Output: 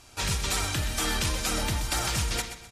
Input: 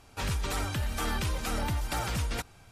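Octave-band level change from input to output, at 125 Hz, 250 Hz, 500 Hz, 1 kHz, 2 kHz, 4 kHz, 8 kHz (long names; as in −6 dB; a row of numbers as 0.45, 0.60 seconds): +1.0, +2.0, +2.0, +1.5, +5.0, +8.5, +10.0 decibels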